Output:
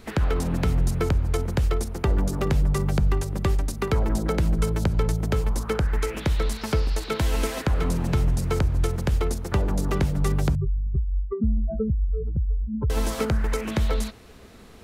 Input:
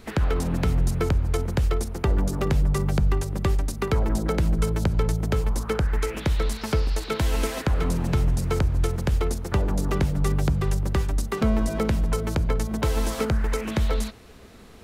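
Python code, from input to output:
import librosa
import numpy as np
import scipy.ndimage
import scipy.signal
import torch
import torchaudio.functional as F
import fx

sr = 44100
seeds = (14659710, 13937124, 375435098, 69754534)

y = fx.spec_expand(x, sr, power=3.6, at=(10.55, 12.9))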